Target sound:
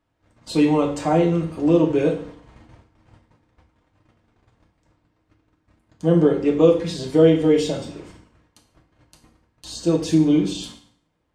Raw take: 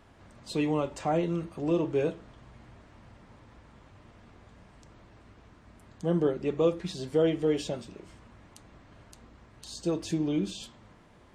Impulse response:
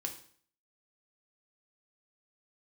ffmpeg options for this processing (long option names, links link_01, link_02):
-filter_complex "[0:a]agate=range=-24dB:threshold=-50dB:ratio=16:detection=peak[link_01];[1:a]atrim=start_sample=2205,asetrate=41454,aresample=44100[link_02];[link_01][link_02]afir=irnorm=-1:irlink=0,volume=8.5dB"